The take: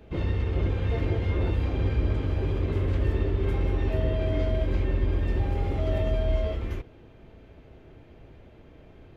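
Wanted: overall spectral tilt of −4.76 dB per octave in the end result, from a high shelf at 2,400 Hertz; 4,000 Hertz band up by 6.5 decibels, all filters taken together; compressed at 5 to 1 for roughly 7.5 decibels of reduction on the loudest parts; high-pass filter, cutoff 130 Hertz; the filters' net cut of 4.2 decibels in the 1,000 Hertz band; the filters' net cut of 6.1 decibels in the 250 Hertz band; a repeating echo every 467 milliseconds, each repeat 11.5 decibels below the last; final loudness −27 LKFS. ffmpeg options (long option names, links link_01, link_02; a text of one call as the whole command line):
ffmpeg -i in.wav -af "highpass=130,equalizer=frequency=250:width_type=o:gain=-8,equalizer=frequency=1000:width_type=o:gain=-6.5,highshelf=frequency=2400:gain=6.5,equalizer=frequency=4000:width_type=o:gain=3.5,acompressor=threshold=-37dB:ratio=5,aecho=1:1:467|934|1401:0.266|0.0718|0.0194,volume=13.5dB" out.wav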